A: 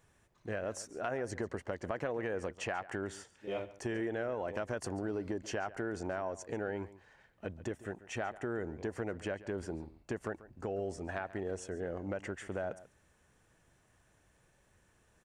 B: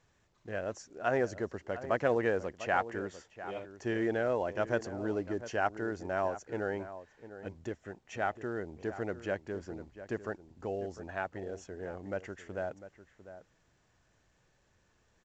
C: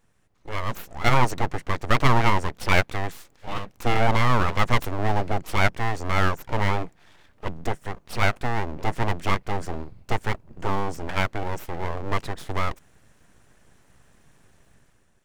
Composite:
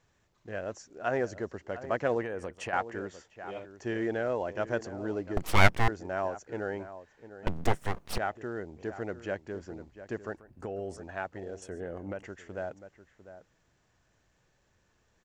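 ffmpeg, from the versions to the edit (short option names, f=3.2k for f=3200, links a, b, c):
-filter_complex "[0:a]asplit=3[a][b][c];[2:a]asplit=2[d][e];[1:a]asplit=6[f][g][h][i][j][k];[f]atrim=end=2.232[l];[a]atrim=start=2.228:end=2.732[m];[g]atrim=start=2.728:end=5.372[n];[d]atrim=start=5.368:end=5.882[o];[h]atrim=start=5.878:end=7.472[p];[e]atrim=start=7.468:end=8.182[q];[i]atrim=start=8.178:end=10.372[r];[b]atrim=start=10.368:end=10.972[s];[j]atrim=start=10.968:end=11.622[t];[c]atrim=start=11.618:end=12.232[u];[k]atrim=start=12.228[v];[l][m]acrossfade=d=0.004:c1=hsin:c2=hsin[w];[w][n]acrossfade=d=0.004:c1=hsin:c2=hsin[x];[x][o]acrossfade=d=0.004:c1=hsin:c2=hsin[y];[y][p]acrossfade=d=0.004:c1=hsin:c2=hsin[z];[z][q]acrossfade=d=0.004:c1=hsin:c2=hsin[aa];[aa][r]acrossfade=d=0.004:c1=hsin:c2=hsin[ab];[ab][s]acrossfade=d=0.004:c1=hsin:c2=hsin[ac];[ac][t]acrossfade=d=0.004:c1=hsin:c2=hsin[ad];[ad][u]acrossfade=d=0.004:c1=hsin:c2=hsin[ae];[ae][v]acrossfade=d=0.004:c1=hsin:c2=hsin"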